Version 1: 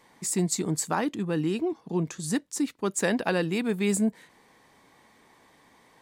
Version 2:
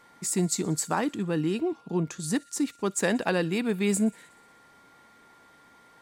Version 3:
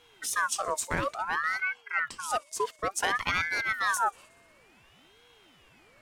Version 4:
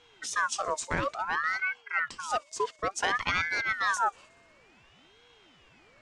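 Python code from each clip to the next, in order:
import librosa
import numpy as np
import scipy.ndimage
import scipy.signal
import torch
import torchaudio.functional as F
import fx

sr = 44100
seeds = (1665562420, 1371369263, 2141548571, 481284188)

y1 = fx.echo_wet_highpass(x, sr, ms=61, feedback_pct=72, hz=2200.0, wet_db=-22)
y1 = y1 + 10.0 ** (-57.0 / 20.0) * np.sin(2.0 * np.pi * 1400.0 * np.arange(len(y1)) / sr)
y2 = fx.ring_lfo(y1, sr, carrier_hz=1300.0, swing_pct=45, hz=0.57)
y3 = scipy.signal.sosfilt(scipy.signal.butter(4, 7400.0, 'lowpass', fs=sr, output='sos'), y2)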